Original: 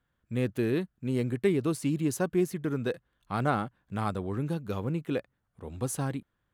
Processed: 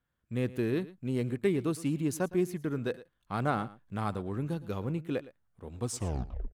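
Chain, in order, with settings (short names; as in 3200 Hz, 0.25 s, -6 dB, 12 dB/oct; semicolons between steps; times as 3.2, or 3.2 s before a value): tape stop at the end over 0.72 s; in parallel at -8.5 dB: backlash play -37 dBFS; on the sum: echo 0.112 s -18 dB; gain -5 dB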